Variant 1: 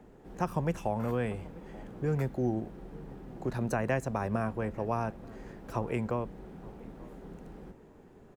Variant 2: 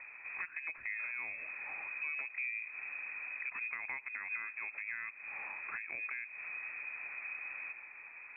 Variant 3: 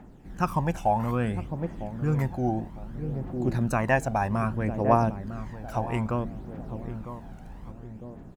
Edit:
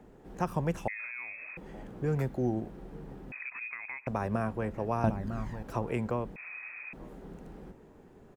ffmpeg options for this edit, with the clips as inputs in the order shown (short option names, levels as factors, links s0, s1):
-filter_complex "[1:a]asplit=3[s0][s1][s2];[0:a]asplit=5[s3][s4][s5][s6][s7];[s3]atrim=end=0.882[s8];[s0]atrim=start=0.878:end=1.572[s9];[s4]atrim=start=1.568:end=3.322[s10];[s1]atrim=start=3.318:end=4.072[s11];[s5]atrim=start=4.068:end=5.042[s12];[2:a]atrim=start=5.038:end=5.632[s13];[s6]atrim=start=5.628:end=6.362[s14];[s2]atrim=start=6.358:end=6.932[s15];[s7]atrim=start=6.928[s16];[s8][s9]acrossfade=d=0.004:c1=hsin:c2=hsin[s17];[s17][s10]acrossfade=d=0.004:c1=hsin:c2=hsin[s18];[s18][s11]acrossfade=d=0.004:c1=hsin:c2=hsin[s19];[s19][s12]acrossfade=d=0.004:c1=hsin:c2=hsin[s20];[s20][s13]acrossfade=d=0.004:c1=hsin:c2=hsin[s21];[s21][s14]acrossfade=d=0.004:c1=hsin:c2=hsin[s22];[s22][s15]acrossfade=d=0.004:c1=hsin:c2=hsin[s23];[s23][s16]acrossfade=d=0.004:c1=hsin:c2=hsin"